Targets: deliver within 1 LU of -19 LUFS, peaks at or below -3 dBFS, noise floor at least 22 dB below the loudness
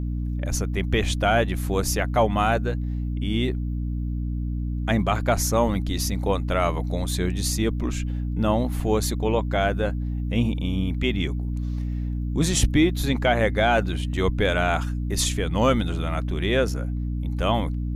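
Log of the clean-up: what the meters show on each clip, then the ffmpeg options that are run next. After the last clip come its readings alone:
hum 60 Hz; harmonics up to 300 Hz; hum level -24 dBFS; loudness -24.5 LUFS; peak -8.5 dBFS; loudness target -19.0 LUFS
-> -af "bandreject=f=60:t=h:w=6,bandreject=f=120:t=h:w=6,bandreject=f=180:t=h:w=6,bandreject=f=240:t=h:w=6,bandreject=f=300:t=h:w=6"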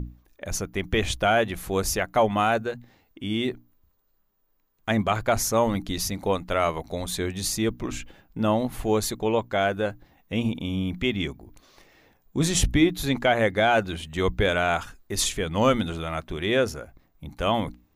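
hum none; loudness -25.5 LUFS; peak -8.5 dBFS; loudness target -19.0 LUFS
-> -af "volume=6.5dB,alimiter=limit=-3dB:level=0:latency=1"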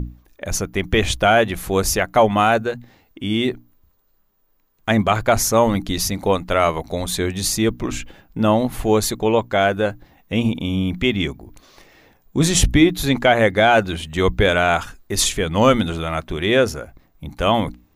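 loudness -19.0 LUFS; peak -3.0 dBFS; noise floor -61 dBFS

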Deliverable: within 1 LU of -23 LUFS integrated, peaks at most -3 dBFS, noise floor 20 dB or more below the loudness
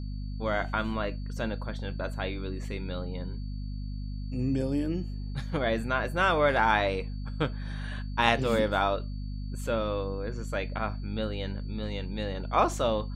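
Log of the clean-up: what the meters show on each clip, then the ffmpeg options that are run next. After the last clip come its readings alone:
hum 50 Hz; harmonics up to 250 Hz; hum level -33 dBFS; steady tone 4500 Hz; tone level -57 dBFS; loudness -30.5 LUFS; peak -6.0 dBFS; loudness target -23.0 LUFS
-> -af "bandreject=f=50:t=h:w=4,bandreject=f=100:t=h:w=4,bandreject=f=150:t=h:w=4,bandreject=f=200:t=h:w=4,bandreject=f=250:t=h:w=4"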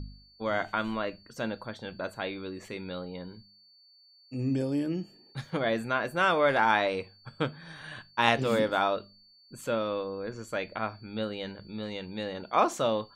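hum none; steady tone 4500 Hz; tone level -57 dBFS
-> -af "bandreject=f=4.5k:w=30"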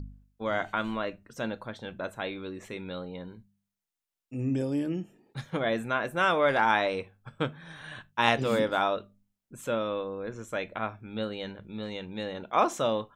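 steady tone none; loudness -30.5 LUFS; peak -6.5 dBFS; loudness target -23.0 LUFS
-> -af "volume=7.5dB,alimiter=limit=-3dB:level=0:latency=1"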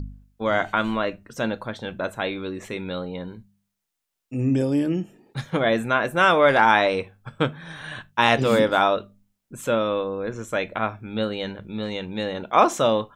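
loudness -23.0 LUFS; peak -3.0 dBFS; noise floor -80 dBFS

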